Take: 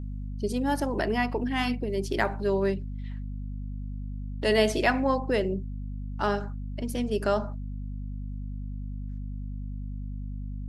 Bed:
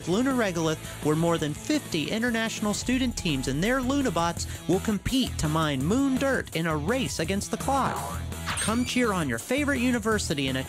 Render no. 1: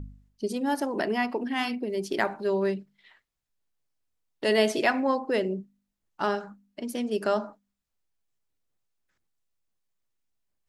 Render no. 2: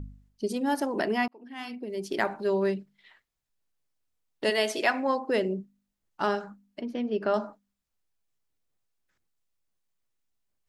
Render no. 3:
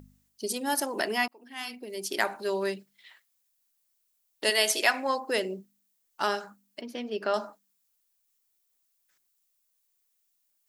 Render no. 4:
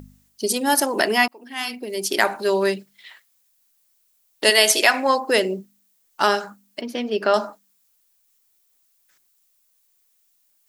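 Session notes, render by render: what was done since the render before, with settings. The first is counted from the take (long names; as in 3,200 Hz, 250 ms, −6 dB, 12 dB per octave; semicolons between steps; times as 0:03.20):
hum removal 50 Hz, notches 5
0:01.28–0:02.34: fade in; 0:04.49–0:05.28: high-pass filter 880 Hz → 210 Hz 6 dB per octave; 0:06.81–0:07.34: high-frequency loss of the air 260 metres
RIAA equalisation recording
level +9.5 dB; brickwall limiter −2 dBFS, peak gain reduction 2.5 dB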